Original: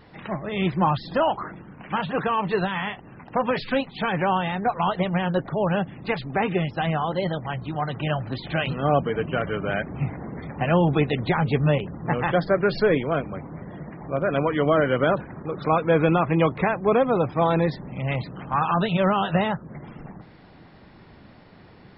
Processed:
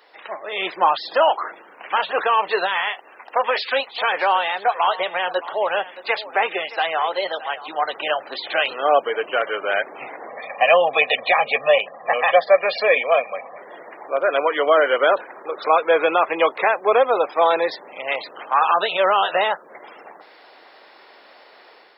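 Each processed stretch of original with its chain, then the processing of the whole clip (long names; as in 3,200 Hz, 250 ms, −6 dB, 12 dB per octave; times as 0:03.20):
0:02.82–0:07.68: low-shelf EQ 420 Hz −6 dB + single-tap delay 621 ms −16.5 dB
0:10.28–0:13.58: loudspeaker in its box 120–4,100 Hz, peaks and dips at 120 Hz +8 dB, 260 Hz +9 dB, 400 Hz −10 dB, 830 Hz +7 dB, 1,400 Hz −8 dB, 2,400 Hz +8 dB + comb filter 1.7 ms, depth 83%
whole clip: high-pass filter 460 Hz 24 dB per octave; high-shelf EQ 3,800 Hz +7 dB; automatic gain control gain up to 6 dB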